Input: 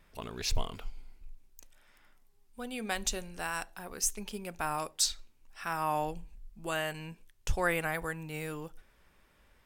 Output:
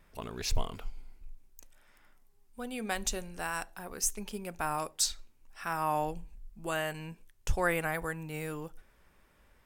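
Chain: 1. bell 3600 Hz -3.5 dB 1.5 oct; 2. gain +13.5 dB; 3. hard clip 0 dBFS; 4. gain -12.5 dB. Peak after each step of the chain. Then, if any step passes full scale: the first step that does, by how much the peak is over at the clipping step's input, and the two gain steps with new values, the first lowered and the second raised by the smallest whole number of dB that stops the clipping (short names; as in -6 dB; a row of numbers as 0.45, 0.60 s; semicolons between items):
-15.5, -2.0, -2.0, -14.5 dBFS; no overload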